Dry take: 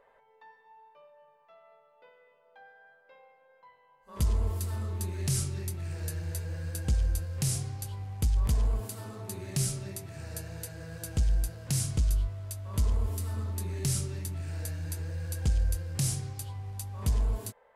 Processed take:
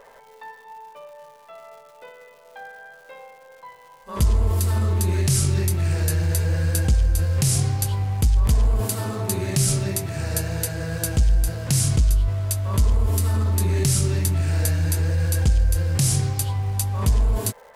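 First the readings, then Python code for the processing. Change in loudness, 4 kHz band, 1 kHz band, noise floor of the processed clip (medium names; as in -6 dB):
+10.5 dB, +10.5 dB, +13.0 dB, -49 dBFS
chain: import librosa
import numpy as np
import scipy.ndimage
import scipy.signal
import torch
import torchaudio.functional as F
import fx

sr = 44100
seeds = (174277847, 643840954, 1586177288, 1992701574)

p1 = fx.over_compress(x, sr, threshold_db=-34.0, ratio=-0.5)
p2 = x + (p1 * 10.0 ** (-3.0 / 20.0))
p3 = fx.dmg_crackle(p2, sr, seeds[0], per_s=330.0, level_db=-52.0)
y = p3 * 10.0 ** (8.0 / 20.0)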